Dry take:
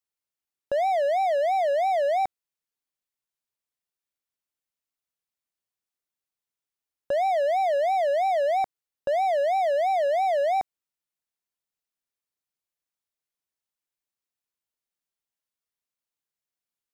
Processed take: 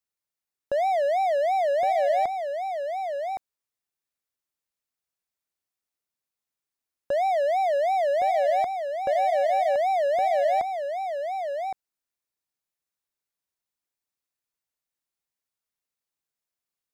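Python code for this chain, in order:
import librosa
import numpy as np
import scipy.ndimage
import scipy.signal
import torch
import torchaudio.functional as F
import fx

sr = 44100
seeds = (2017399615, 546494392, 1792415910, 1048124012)

p1 = fx.peak_eq(x, sr, hz=3100.0, db=-3.0, octaves=0.25)
y = p1 + fx.echo_single(p1, sr, ms=1115, db=-6.5, dry=0)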